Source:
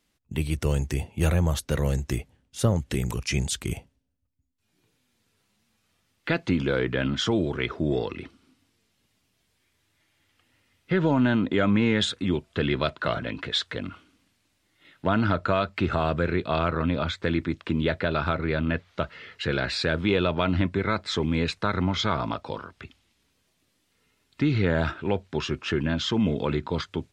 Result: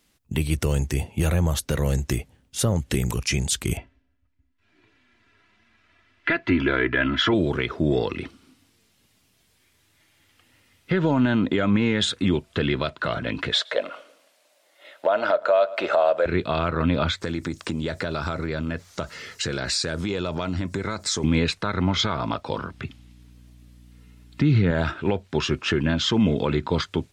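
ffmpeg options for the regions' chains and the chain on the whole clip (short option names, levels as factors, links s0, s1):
-filter_complex "[0:a]asettb=1/sr,asplit=3[s0][s1][s2];[s0]atrim=end=3.774[s3];[s1]atrim=start=3.77:end=7.34,asetpts=PTS-STARTPTS,afade=t=in:d=0.004:c=qsin,afade=t=out:st=3.566:d=0.004:c=qsin,lowpass=3100,equalizer=f=1800:w=1.2:g=8.5,aecho=1:1:3:0.68,atrim=end_sample=157437[s4];[s2]atrim=start=7.336[s5];[s3][s4]acrossfade=d=0.004:c1=hsin:c2=qsin[s6];[s6][s5]acrossfade=d=0.004:c1=qsin:c2=hsin,asettb=1/sr,asplit=3[s7][s8][s9];[s7]atrim=end=13.544[s10];[s8]atrim=start=13.54:end=16.26,asetpts=PTS-STARTPTS,afade=t=in:d=0.004:c=qsin,afade=t=out:st=2.716:d=0.004:c=qsin,highpass=f=590:t=q:w=6.6,asplit=2[s11][s12];[s12]adelay=111,lowpass=f=2700:p=1,volume=0.075,asplit=2[s13][s14];[s14]adelay=111,lowpass=f=2700:p=1,volume=0.44,asplit=2[s15][s16];[s16]adelay=111,lowpass=f=2700:p=1,volume=0.44[s17];[s11][s13][s15][s17]amix=inputs=4:normalize=0,atrim=end_sample=119952[s18];[s9]atrim=start=16.256[s19];[s10][s18]acrossfade=d=0.004:c1=hsin:c2=qsin[s20];[s20][s19]acrossfade=d=0.004:c1=qsin:c2=hsin,asettb=1/sr,asplit=3[s21][s22][s23];[s21]atrim=end=17.214[s24];[s22]atrim=start=17.21:end=21.24,asetpts=PTS-STARTPTS,afade=t=in:d=0.004:c=qsin,afade=t=out:st=4.026:d=0.004:c=qsin,highshelf=f=4500:t=q:w=1.5:g=12,acompressor=threshold=0.0316:ratio=4:attack=3.2:release=140:knee=1:detection=peak[s25];[s23]atrim=start=21.236[s26];[s24][s25]acrossfade=d=0.004:c1=hsin:c2=qsin[s27];[s27][s26]acrossfade=d=0.004:c1=qsin:c2=hsin,asettb=1/sr,asplit=3[s28][s29][s30];[s28]atrim=end=22.584[s31];[s29]atrim=start=22.58:end=24.71,asetpts=PTS-STARTPTS,afade=t=in:d=0.004:c=qsin,afade=t=out:st=2.126:d=0.004:c=qsin,highpass=110,bass=f=250:g=10,treble=f=4000:g=-2,aeval=exprs='val(0)+0.002*(sin(2*PI*60*n/s)+sin(2*PI*2*60*n/s)/2+sin(2*PI*3*60*n/s)/3+sin(2*PI*4*60*n/s)/4+sin(2*PI*5*60*n/s)/5)':c=same[s32];[s30]atrim=start=24.706[s33];[s31][s32]acrossfade=d=0.004:c1=hsin:c2=qsin[s34];[s34][s33]acrossfade=d=0.004:c1=qsin:c2=hsin,highshelf=f=7000:g=4.5,alimiter=limit=0.141:level=0:latency=1:release=317,volume=2"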